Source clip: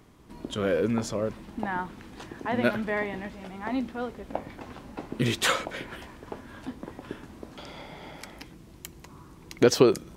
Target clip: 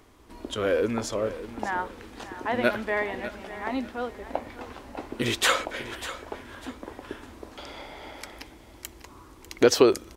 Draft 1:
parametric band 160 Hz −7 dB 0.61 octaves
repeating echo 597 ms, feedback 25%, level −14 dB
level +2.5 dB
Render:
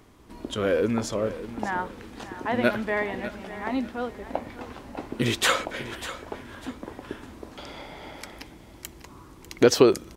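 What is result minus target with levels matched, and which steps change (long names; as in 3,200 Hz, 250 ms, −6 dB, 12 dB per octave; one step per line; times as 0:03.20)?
125 Hz band +4.0 dB
change: parametric band 160 Hz −19 dB 0.61 octaves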